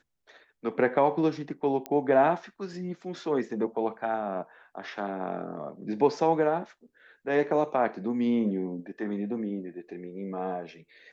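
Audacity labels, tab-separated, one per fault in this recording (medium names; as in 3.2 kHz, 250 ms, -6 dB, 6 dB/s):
1.860000	1.860000	pop -18 dBFS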